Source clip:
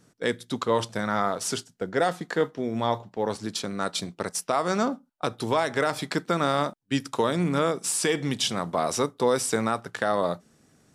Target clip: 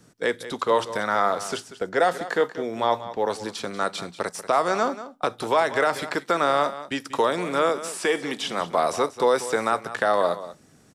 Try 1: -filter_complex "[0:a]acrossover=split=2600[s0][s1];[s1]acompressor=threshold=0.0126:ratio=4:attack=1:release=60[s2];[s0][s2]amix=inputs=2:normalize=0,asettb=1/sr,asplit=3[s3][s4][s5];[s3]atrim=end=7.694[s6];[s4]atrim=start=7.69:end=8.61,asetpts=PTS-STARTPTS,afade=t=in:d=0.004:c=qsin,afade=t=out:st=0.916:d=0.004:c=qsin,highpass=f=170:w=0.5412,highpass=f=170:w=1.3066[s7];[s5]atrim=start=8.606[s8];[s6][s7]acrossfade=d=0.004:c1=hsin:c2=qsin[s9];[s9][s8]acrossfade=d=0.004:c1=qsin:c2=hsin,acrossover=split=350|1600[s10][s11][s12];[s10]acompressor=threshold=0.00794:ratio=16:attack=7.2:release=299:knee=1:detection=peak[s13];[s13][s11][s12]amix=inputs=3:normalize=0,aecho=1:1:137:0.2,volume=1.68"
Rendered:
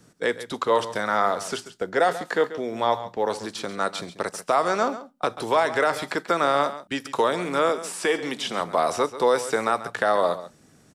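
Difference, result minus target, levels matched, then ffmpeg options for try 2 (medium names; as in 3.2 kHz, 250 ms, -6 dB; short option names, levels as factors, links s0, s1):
echo 51 ms early
-filter_complex "[0:a]acrossover=split=2600[s0][s1];[s1]acompressor=threshold=0.0126:ratio=4:attack=1:release=60[s2];[s0][s2]amix=inputs=2:normalize=0,asettb=1/sr,asplit=3[s3][s4][s5];[s3]atrim=end=7.694[s6];[s4]atrim=start=7.69:end=8.61,asetpts=PTS-STARTPTS,afade=t=in:d=0.004:c=qsin,afade=t=out:st=0.916:d=0.004:c=qsin,highpass=f=170:w=0.5412,highpass=f=170:w=1.3066[s7];[s5]atrim=start=8.606[s8];[s6][s7]acrossfade=d=0.004:c1=hsin:c2=qsin[s9];[s9][s8]acrossfade=d=0.004:c1=qsin:c2=hsin,acrossover=split=350|1600[s10][s11][s12];[s10]acompressor=threshold=0.00794:ratio=16:attack=7.2:release=299:knee=1:detection=peak[s13];[s13][s11][s12]amix=inputs=3:normalize=0,aecho=1:1:188:0.2,volume=1.68"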